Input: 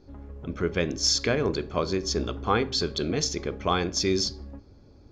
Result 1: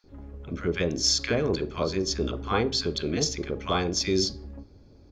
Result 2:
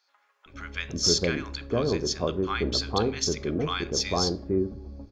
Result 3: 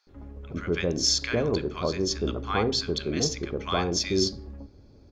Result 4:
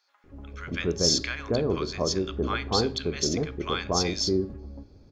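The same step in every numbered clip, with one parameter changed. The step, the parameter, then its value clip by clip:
bands offset in time, time: 40 ms, 460 ms, 70 ms, 240 ms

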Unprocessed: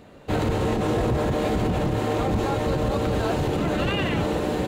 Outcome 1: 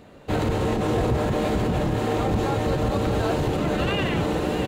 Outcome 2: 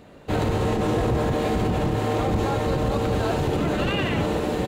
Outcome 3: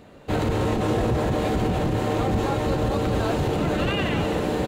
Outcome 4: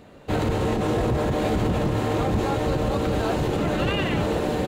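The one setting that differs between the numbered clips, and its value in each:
delay, time: 629 ms, 74 ms, 260 ms, 1069 ms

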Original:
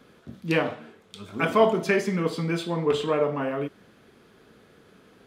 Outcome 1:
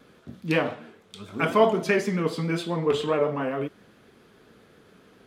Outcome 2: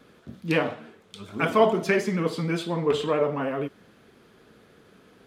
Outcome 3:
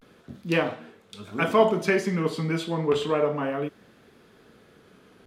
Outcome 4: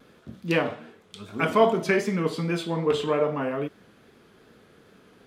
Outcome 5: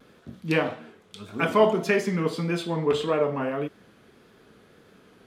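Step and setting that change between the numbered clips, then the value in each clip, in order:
vibrato, rate: 7.4 Hz, 13 Hz, 0.32 Hz, 2.5 Hz, 1.7 Hz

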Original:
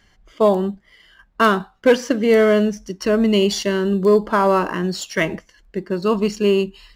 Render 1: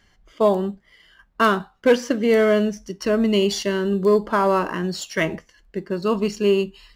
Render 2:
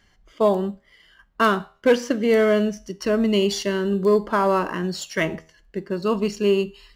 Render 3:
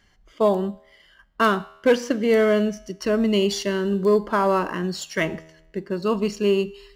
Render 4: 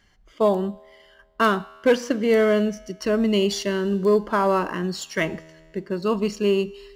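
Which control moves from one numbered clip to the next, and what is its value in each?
feedback comb, decay: 0.18 s, 0.42 s, 0.9 s, 1.9 s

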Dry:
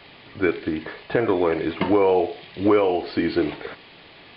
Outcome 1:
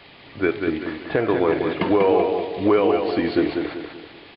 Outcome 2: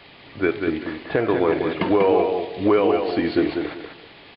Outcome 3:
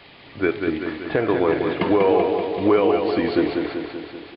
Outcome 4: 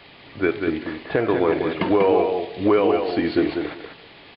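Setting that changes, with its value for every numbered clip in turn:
feedback delay, feedback: 41%, 25%, 61%, 16%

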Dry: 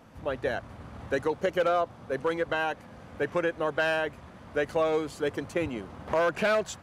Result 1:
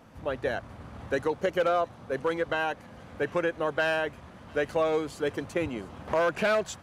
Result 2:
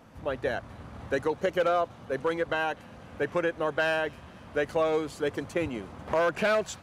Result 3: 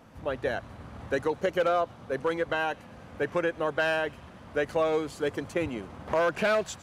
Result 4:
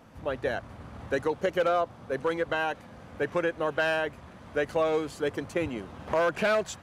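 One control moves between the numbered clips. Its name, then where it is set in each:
feedback echo behind a high-pass, time: 702 ms, 246 ms, 112 ms, 1090 ms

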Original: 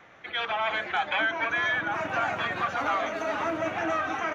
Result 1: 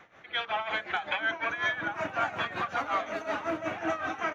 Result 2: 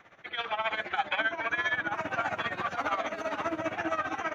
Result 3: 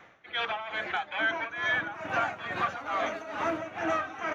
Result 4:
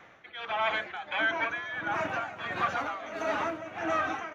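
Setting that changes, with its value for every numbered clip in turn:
tremolo, rate: 5.4 Hz, 15 Hz, 2.3 Hz, 1.5 Hz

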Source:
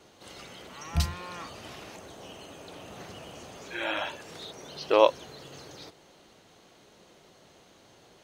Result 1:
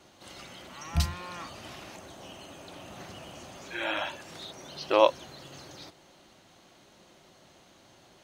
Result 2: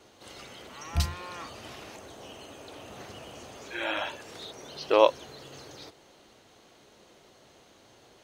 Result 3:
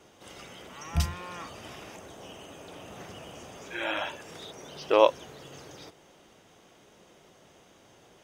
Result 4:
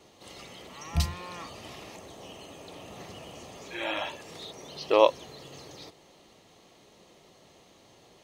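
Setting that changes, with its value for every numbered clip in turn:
band-stop, frequency: 450 Hz, 170 Hz, 4.2 kHz, 1.5 kHz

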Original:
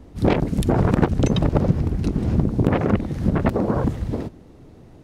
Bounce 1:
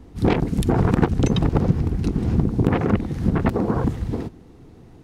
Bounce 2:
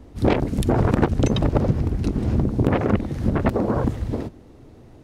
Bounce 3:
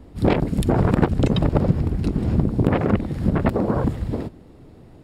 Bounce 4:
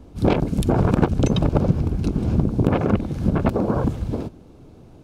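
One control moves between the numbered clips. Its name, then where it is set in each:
band-stop, frequency: 590 Hz, 170 Hz, 6.1 kHz, 1.9 kHz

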